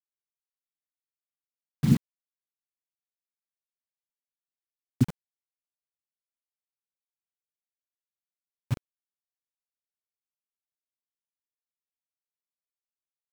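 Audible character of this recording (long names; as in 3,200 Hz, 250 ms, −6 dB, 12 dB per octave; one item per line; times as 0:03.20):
a quantiser's noise floor 6 bits, dither none
chopped level 2.5 Hz, depth 65%, duty 50%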